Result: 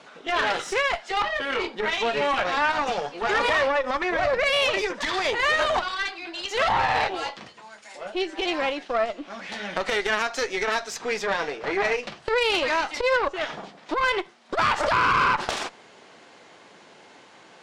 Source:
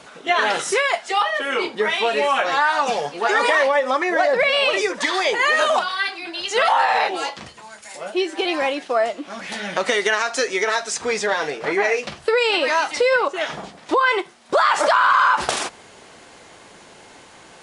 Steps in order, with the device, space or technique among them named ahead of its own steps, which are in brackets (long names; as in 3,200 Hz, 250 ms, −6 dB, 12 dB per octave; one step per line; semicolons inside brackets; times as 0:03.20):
valve radio (band-pass filter 150–5,500 Hz; tube saturation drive 14 dB, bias 0.75; saturating transformer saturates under 270 Hz)